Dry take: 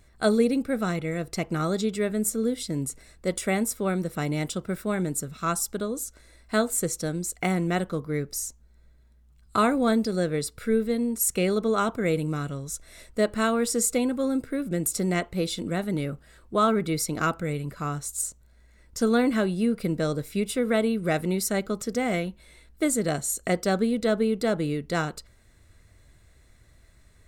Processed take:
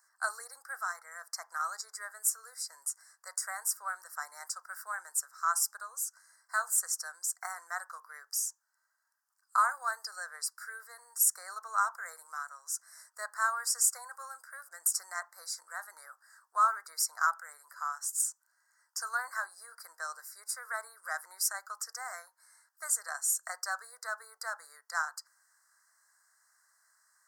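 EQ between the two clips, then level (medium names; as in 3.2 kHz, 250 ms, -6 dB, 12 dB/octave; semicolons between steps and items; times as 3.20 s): steep high-pass 940 Hz 36 dB/octave; elliptic band-stop 1.7–4.9 kHz, stop band 50 dB; 0.0 dB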